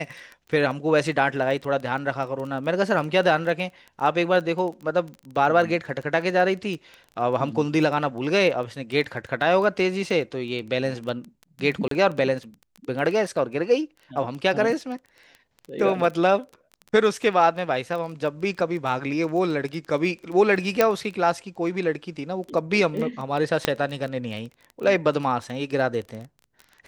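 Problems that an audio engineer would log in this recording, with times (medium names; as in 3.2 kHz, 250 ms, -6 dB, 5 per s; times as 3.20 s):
crackle 13 per s -30 dBFS
11.88–11.91 s: dropout 33 ms
20.81 s: pop -4 dBFS
23.65 s: pop -5 dBFS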